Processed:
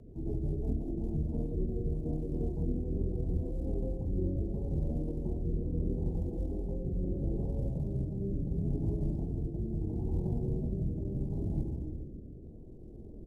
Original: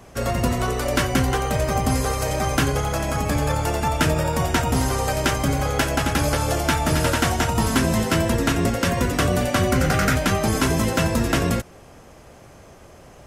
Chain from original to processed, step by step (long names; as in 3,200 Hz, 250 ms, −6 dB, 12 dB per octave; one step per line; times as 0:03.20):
reversed playback
downward compressor 8 to 1, threshold −28 dBFS, peak gain reduction 14 dB
reversed playback
Gaussian smoothing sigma 11 samples
on a send at −1 dB: convolution reverb RT60 2.3 s, pre-delay 10 ms
on the sum: floating-point word with a short mantissa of 6 bits
mains hum 60 Hz, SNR 27 dB
pitch shifter −9 semitones
rotating-speaker cabinet horn 5.5 Hz, later 0.75 Hz, at 0:00.77